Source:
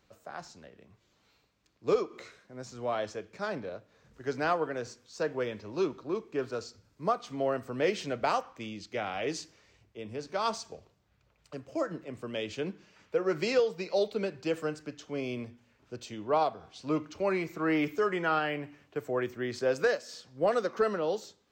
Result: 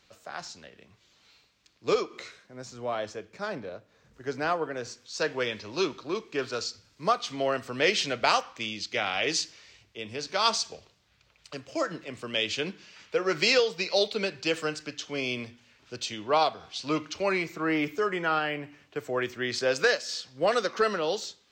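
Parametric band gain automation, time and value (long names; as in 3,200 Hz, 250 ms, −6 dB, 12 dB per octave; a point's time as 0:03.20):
parametric band 4,000 Hz 2.8 octaves
0:02.00 +11 dB
0:02.84 +2.5 dB
0:04.69 +2.5 dB
0:05.24 +14 dB
0:17.12 +14 dB
0:17.72 +4.5 dB
0:18.61 +4.5 dB
0:19.38 +12.5 dB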